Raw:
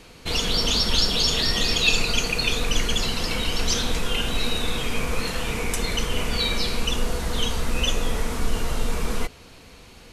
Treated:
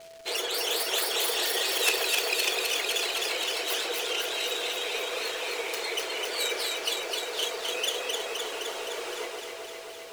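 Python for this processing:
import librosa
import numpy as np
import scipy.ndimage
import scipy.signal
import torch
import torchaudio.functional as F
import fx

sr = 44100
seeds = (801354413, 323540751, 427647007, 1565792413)

y = fx.tracing_dist(x, sr, depth_ms=0.28)
y = fx.dereverb_blind(y, sr, rt60_s=1.3)
y = scipy.signal.sosfilt(scipy.signal.ellip(4, 1.0, 50, 370.0, 'highpass', fs=sr, output='sos'), y)
y = fx.comb_fb(y, sr, f0_hz=850.0, decay_s=0.2, harmonics='all', damping=0.0, mix_pct=30)
y = fx.echo_alternate(y, sr, ms=129, hz=1700.0, feedback_pct=86, wet_db=-2)
y = fx.quant_dither(y, sr, seeds[0], bits=8, dither='none')
y = fx.peak_eq(y, sr, hz=1100.0, db=-5.5, octaves=0.84)
y = y + 10.0 ** (-48.0 / 20.0) * np.sin(2.0 * np.pi * 660.0 * np.arange(len(y)) / sr)
y = fx.high_shelf(y, sr, hz=11000.0, db=-9.5)
y = y * librosa.db_to_amplitude(2.0)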